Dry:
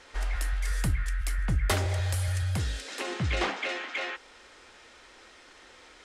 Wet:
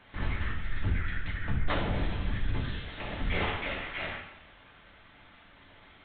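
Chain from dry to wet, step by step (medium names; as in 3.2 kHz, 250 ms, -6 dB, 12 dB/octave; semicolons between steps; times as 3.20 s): LPC vocoder at 8 kHz whisper; two-slope reverb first 0.7 s, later 1.9 s, DRR -1.5 dB; trim -5.5 dB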